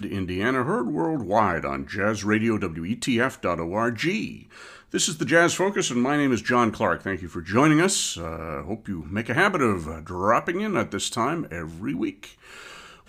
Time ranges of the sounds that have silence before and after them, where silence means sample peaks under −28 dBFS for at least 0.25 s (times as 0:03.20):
0:04.94–0:12.25